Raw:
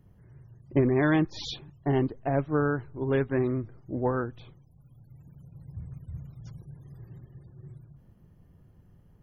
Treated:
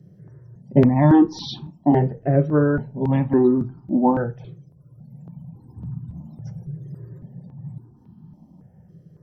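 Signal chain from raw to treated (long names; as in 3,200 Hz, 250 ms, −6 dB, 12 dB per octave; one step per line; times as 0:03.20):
convolution reverb RT60 0.25 s, pre-delay 3 ms, DRR 5.5 dB
step-sequenced phaser 3.6 Hz 240–2,000 Hz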